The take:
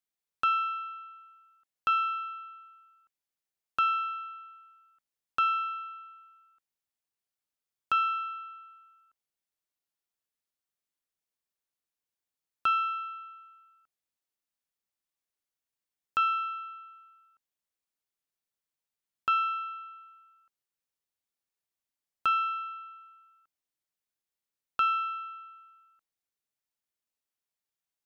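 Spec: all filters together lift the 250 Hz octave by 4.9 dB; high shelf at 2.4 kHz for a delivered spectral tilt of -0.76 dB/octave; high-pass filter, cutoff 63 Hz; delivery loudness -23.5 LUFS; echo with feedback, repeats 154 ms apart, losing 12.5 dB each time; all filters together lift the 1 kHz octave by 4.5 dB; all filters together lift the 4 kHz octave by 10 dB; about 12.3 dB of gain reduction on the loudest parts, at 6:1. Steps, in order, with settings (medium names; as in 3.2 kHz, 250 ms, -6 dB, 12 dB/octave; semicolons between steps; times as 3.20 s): high-pass 63 Hz; peaking EQ 250 Hz +6 dB; peaking EQ 1 kHz +4 dB; treble shelf 2.4 kHz +6 dB; peaking EQ 4 kHz +8 dB; compression 6:1, threshold -31 dBFS; feedback delay 154 ms, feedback 24%, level -12.5 dB; trim +11.5 dB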